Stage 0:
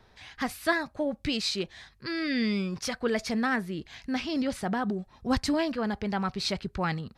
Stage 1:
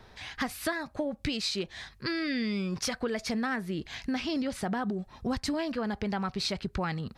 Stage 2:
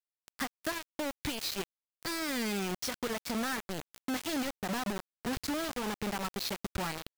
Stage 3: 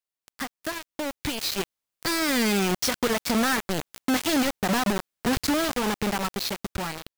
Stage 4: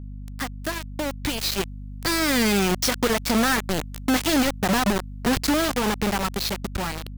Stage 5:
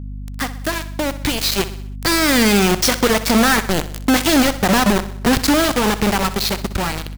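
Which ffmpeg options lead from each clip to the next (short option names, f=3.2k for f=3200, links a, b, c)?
-af "acompressor=threshold=-34dB:ratio=6,volume=5.5dB"
-af "acrusher=bits=4:mix=0:aa=0.000001,volume=-5dB"
-af "dynaudnorm=f=600:g=5:m=8dB,volume=2.5dB"
-af "aeval=exprs='val(0)+0.0141*(sin(2*PI*50*n/s)+sin(2*PI*2*50*n/s)/2+sin(2*PI*3*50*n/s)/3+sin(2*PI*4*50*n/s)/4+sin(2*PI*5*50*n/s)/5)':c=same,volume=2.5dB"
-af "aecho=1:1:63|126|189|252|315:0.188|0.0998|0.0529|0.028|0.0149,volume=6.5dB"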